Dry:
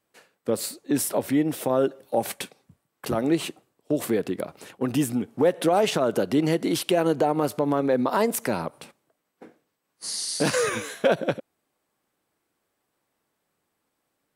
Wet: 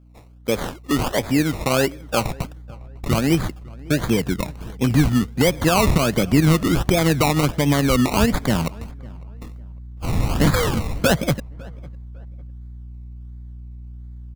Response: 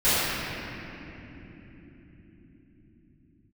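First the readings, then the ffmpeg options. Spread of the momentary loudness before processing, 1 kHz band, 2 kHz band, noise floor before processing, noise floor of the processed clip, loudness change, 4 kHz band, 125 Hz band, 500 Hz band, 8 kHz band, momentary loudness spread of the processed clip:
11 LU, +3.5 dB, +7.5 dB, -78 dBFS, -39 dBFS, +5.0 dB, +6.5 dB, +14.0 dB, +0.5 dB, +3.0 dB, 22 LU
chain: -filter_complex "[0:a]acrusher=samples=22:mix=1:aa=0.000001:lfo=1:lforange=13.2:lforate=1.4,aeval=exprs='val(0)+0.00251*(sin(2*PI*60*n/s)+sin(2*PI*2*60*n/s)/2+sin(2*PI*3*60*n/s)/3+sin(2*PI*4*60*n/s)/4+sin(2*PI*5*60*n/s)/5)':c=same,asubboost=boost=5.5:cutoff=170,asplit=2[a][b];[b]adelay=553,lowpass=f=1.8k:p=1,volume=-23dB,asplit=2[c][d];[d]adelay=553,lowpass=f=1.8k:p=1,volume=0.34[e];[c][e]amix=inputs=2:normalize=0[f];[a][f]amix=inputs=2:normalize=0,volume=4dB"

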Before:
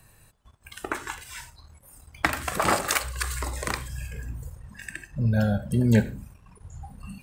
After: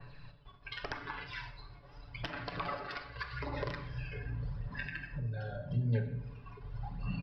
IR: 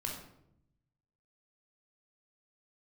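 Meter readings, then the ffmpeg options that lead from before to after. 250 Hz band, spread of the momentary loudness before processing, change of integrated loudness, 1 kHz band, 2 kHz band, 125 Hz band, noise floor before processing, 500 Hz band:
-16.0 dB, 20 LU, -13.0 dB, -12.5 dB, -10.5 dB, -9.0 dB, -58 dBFS, -11.5 dB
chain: -filter_complex "[0:a]lowshelf=f=98:g=-4,aecho=1:1:7:0.94,bandreject=f=153.4:t=h:w=4,bandreject=f=306.8:t=h:w=4,bandreject=f=460.2:t=h:w=4,bandreject=f=613.6:t=h:w=4,bandreject=f=767:t=h:w=4,bandreject=f=920.4:t=h:w=4,bandreject=f=1.0738k:t=h:w=4,bandreject=f=1.2272k:t=h:w=4,bandreject=f=1.3806k:t=h:w=4,bandreject=f=1.534k:t=h:w=4,bandreject=f=1.6874k:t=h:w=4,bandreject=f=1.8408k:t=h:w=4,bandreject=f=1.9942k:t=h:w=4,bandreject=f=2.1476k:t=h:w=4,bandreject=f=2.301k:t=h:w=4,bandreject=f=2.4544k:t=h:w=4,bandreject=f=2.6078k:t=h:w=4,bandreject=f=2.7612k:t=h:w=4,acompressor=threshold=-35dB:ratio=20,aresample=11025,aeval=exprs='(mod(16.8*val(0)+1,2)-1)/16.8':c=same,aresample=44100,aphaser=in_gain=1:out_gain=1:delay=2.8:decay=0.46:speed=0.84:type=sinusoidal,asplit=2[a][b];[1:a]atrim=start_sample=2205[c];[b][c]afir=irnorm=-1:irlink=0,volume=-4.5dB[d];[a][d]amix=inputs=2:normalize=0,adynamicequalizer=threshold=0.00251:dfrequency=2700:dqfactor=0.7:tfrequency=2700:tqfactor=0.7:attack=5:release=100:ratio=0.375:range=3:mode=cutabove:tftype=highshelf,volume=-4dB"

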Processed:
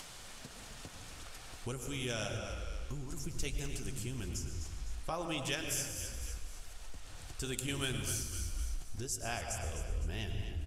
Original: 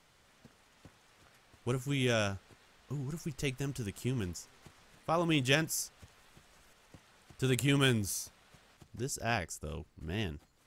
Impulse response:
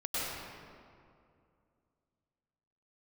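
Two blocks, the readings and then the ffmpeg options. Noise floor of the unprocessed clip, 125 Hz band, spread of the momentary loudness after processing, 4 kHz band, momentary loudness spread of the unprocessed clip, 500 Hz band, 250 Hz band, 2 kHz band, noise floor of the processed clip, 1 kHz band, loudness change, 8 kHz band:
-66 dBFS, -5.0 dB, 13 LU, -3.5 dB, 15 LU, -7.0 dB, -8.5 dB, -6.0 dB, -50 dBFS, -5.0 dB, -6.0 dB, +1.5 dB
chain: -filter_complex "[0:a]crystalizer=i=2.5:c=0,lowpass=10k,equalizer=f=720:t=o:w=0.3:g=2.5,asplit=4[a][b][c][d];[b]adelay=254,afreqshift=-38,volume=-12.5dB[e];[c]adelay=508,afreqshift=-76,volume=-22.1dB[f];[d]adelay=762,afreqshift=-114,volume=-31.8dB[g];[a][e][f][g]amix=inputs=4:normalize=0,asplit=2[h][i];[1:a]atrim=start_sample=2205,afade=t=out:st=0.4:d=0.01,atrim=end_sample=18081,lowshelf=f=110:g=11.5[j];[i][j]afir=irnorm=-1:irlink=0,volume=-10.5dB[k];[h][k]amix=inputs=2:normalize=0,acompressor=threshold=-39dB:ratio=2,asubboost=boost=6:cutoff=58,acompressor=mode=upward:threshold=-37dB:ratio=2.5,bandreject=f=2k:w=23,flanger=delay=2.8:depth=7.5:regen=-61:speed=1.6:shape=triangular,volume=2.5dB"

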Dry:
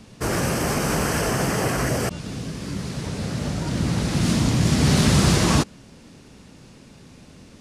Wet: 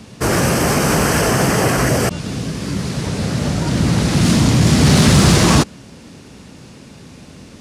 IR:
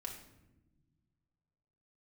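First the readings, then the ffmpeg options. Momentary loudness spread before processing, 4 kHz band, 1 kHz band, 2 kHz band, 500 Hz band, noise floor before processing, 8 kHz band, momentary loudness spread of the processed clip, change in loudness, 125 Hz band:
13 LU, +7.0 dB, +7.5 dB, +7.5 dB, +7.5 dB, -48 dBFS, +7.0 dB, 12 LU, +7.0 dB, +7.0 dB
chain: -filter_complex "[0:a]highpass=50,asplit=2[a][b];[b]asoftclip=type=hard:threshold=-17dB,volume=-4dB[c];[a][c]amix=inputs=2:normalize=0,volume=3.5dB"

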